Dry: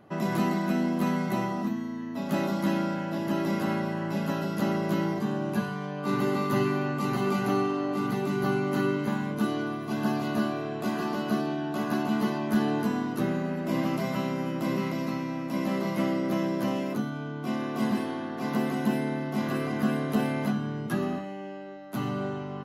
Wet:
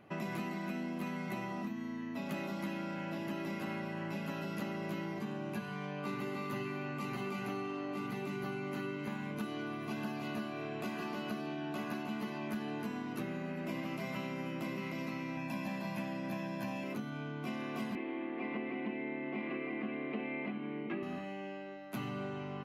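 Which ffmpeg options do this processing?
ffmpeg -i in.wav -filter_complex "[0:a]asettb=1/sr,asplit=3[link_01][link_02][link_03];[link_01]atrim=end=15.374[link_04];[link_02]atrim=start=15.37:end=16.84,asetpts=PTS-STARTPTS,afade=type=in:duration=0.004:curve=qsin,afade=type=out:start_time=1.466:duration=0.004:curve=qsin,aecho=1:1:1.2:0.77,atrim=end_sample=64827[link_05];[link_03]atrim=start=16.836[link_06];[link_04][link_05]acrossfade=duration=0.004:curve1=hsin:curve2=qsin[link_07];[link_07][link_06]acrossfade=duration=0.004:curve1=qsin:curve2=hsin,asettb=1/sr,asplit=3[link_08][link_09][link_10];[link_08]atrim=end=17.954[link_11];[link_09]atrim=start=17.95:end=21.03,asetpts=PTS-STARTPTS,afade=type=in:duration=0.004:curve=qsin,afade=type=out:start_time=3.076:duration=0.004:curve=qsin,highpass=frequency=190:width=0.5412,highpass=frequency=190:width=1.3066,equalizer=frequency=330:width_type=q:width=4:gain=9,equalizer=frequency=490:width_type=q:width=4:gain=3,equalizer=frequency=1500:width_type=q:width=4:gain=-7,equalizer=frequency=2200:width_type=q:width=4:gain=8,lowpass=frequency=2900:width=0.5412,lowpass=frequency=2900:width=1.3066[link_12];[link_10]atrim=start=21.026[link_13];[link_11][link_12]acrossfade=duration=0.004:curve1=hsin:curve2=qsin[link_14];[link_14][link_13]acrossfade=duration=0.004:curve1=qsin:curve2=hsin,equalizer=frequency=2400:width=2.4:gain=10,acompressor=threshold=-31dB:ratio=6,volume=-5dB" out.wav

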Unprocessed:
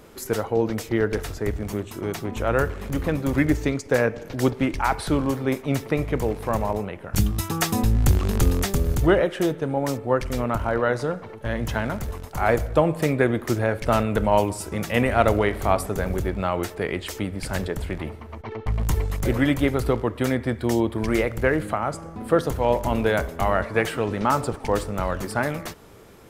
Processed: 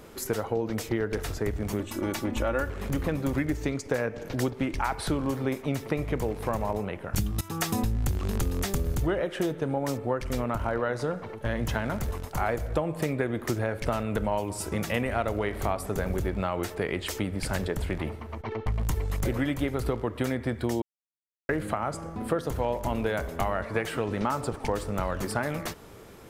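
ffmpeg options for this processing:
ffmpeg -i in.wav -filter_complex "[0:a]asettb=1/sr,asplit=3[link_01][link_02][link_03];[link_01]atrim=end=1.794[link_04];[link_02]atrim=start=1.79:end=2.7,asetpts=PTS-STARTPTS,afade=type=in:duration=0.004:curve=qsin,afade=type=out:start_time=0.906:duration=0.004:curve=qsin,aecho=1:1:3.5:0.65,atrim=end_sample=40131[link_05];[link_03]atrim=start=2.696[link_06];[link_04][link_05]acrossfade=duration=0.004:curve1=hsin:curve2=qsin[link_07];[link_07][link_06]acrossfade=duration=0.004:curve1=qsin:curve2=hsin,asplit=4[link_08][link_09][link_10][link_11];[link_08]atrim=end=7.41,asetpts=PTS-STARTPTS,afade=type=out:start_time=7.406:duration=0.004:curve=hsin:silence=0.223872[link_12];[link_09]atrim=start=7.41:end=20.82,asetpts=PTS-STARTPTS,afade=type=in:duration=0.41:silence=0.223872,afade=type=out:start_time=13.406:duration=0.004:curve=hsin[link_13];[link_10]atrim=start=20.82:end=21.49,asetpts=PTS-STARTPTS,volume=0[link_14];[link_11]atrim=start=21.49,asetpts=PTS-STARTPTS,afade=type=in:duration=0.004:curve=hsin[link_15];[link_12][link_13][link_14][link_15]concat=n=4:v=0:a=1,acompressor=threshold=-24dB:ratio=6" out.wav

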